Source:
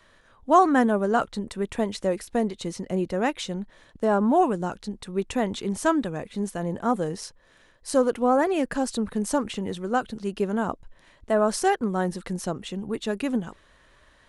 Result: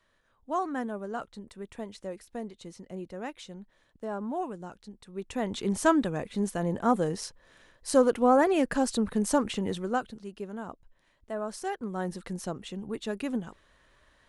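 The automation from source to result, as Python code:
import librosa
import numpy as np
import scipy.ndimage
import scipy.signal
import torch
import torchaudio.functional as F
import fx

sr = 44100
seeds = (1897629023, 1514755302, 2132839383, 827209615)

y = fx.gain(x, sr, db=fx.line((5.07, -13.0), (5.67, -0.5), (9.78, -0.5), (10.31, -12.5), (11.62, -12.5), (12.13, -5.5)))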